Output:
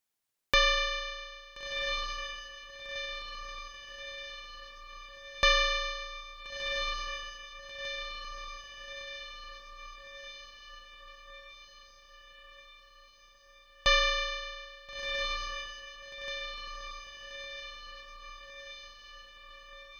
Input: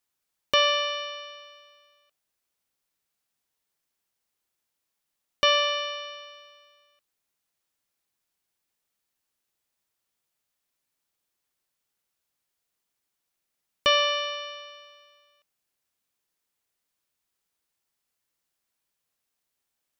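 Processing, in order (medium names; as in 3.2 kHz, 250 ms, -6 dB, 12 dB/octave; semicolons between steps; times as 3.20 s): echo that smears into a reverb 1393 ms, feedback 62%, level -7 dB; ring modulator 610 Hz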